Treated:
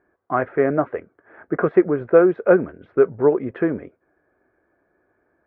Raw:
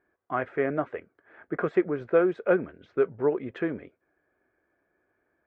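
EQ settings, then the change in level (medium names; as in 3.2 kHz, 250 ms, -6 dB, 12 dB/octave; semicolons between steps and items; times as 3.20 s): low-pass 1.6 kHz 12 dB/octave; +8.5 dB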